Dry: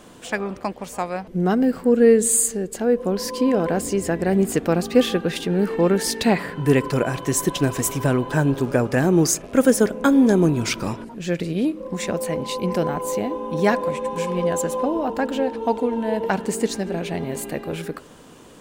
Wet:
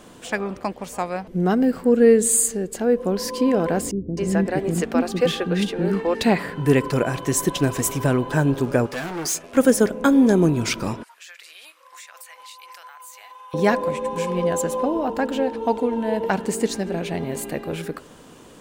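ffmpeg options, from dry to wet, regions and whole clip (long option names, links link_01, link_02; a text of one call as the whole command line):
ffmpeg -i in.wav -filter_complex "[0:a]asettb=1/sr,asplit=3[link_01][link_02][link_03];[link_01]atrim=end=3.914[link_04];[link_02]atrim=start=3.91:end=6.15,asetpts=PTS-STARTPTS,afade=type=in:duration=0.004:curve=qsin,afade=type=out:start_time=2.236:duration=0.004:curve=qsin,highshelf=frequency=11000:gain=-9,acrossover=split=350[link_05][link_06];[link_06]adelay=260[link_07];[link_05][link_07]amix=inputs=2:normalize=0,atrim=end_sample=98784[link_08];[link_03]atrim=start=6.146[link_09];[link_04][link_08]acrossfade=duration=0.004:curve1=hsin:curve2=qsin[link_10];[link_10][link_09]acrossfade=duration=0.004:curve1=qsin:curve2=hsin,asettb=1/sr,asplit=3[link_11][link_12][link_13];[link_11]atrim=end=8.864[link_14];[link_12]atrim=start=8.86:end=9.57,asetpts=PTS-STARTPTS,afade=type=in:duration=0.004:curve=qsin,afade=type=out:start_time=0.706:duration=0.004:curve=qsin,asoftclip=type=hard:threshold=-22dB,lowshelf=frequency=440:gain=-11.5,asplit=2[link_15][link_16];[link_16]adelay=12,volume=-6.5dB[link_17];[link_15][link_17]amix=inputs=2:normalize=0,atrim=end_sample=31311[link_18];[link_13]atrim=start=9.566[link_19];[link_14][link_18]acrossfade=duration=0.004:curve1=hsin:curve2=qsin[link_20];[link_20][link_19]acrossfade=duration=0.004:curve1=qsin:curve2=hsin,asettb=1/sr,asplit=3[link_21][link_22][link_23];[link_21]atrim=end=11.034[link_24];[link_22]atrim=start=11.03:end=13.54,asetpts=PTS-STARTPTS,afade=type=in:duration=0.004:curve=qsin,afade=type=out:start_time=2.506:duration=0.004:curve=qsin,highpass=frequency=1100:width=0.5412,highpass=frequency=1100:width=1.3066,highshelf=frequency=11000:gain=6.5,acompressor=threshold=-39dB:ratio=6:attack=3.2:release=140:knee=1:detection=peak[link_25];[link_23]atrim=start=13.536[link_26];[link_24][link_25]acrossfade=duration=0.004:curve1=hsin:curve2=qsin[link_27];[link_27][link_26]acrossfade=duration=0.004:curve1=qsin:curve2=hsin" out.wav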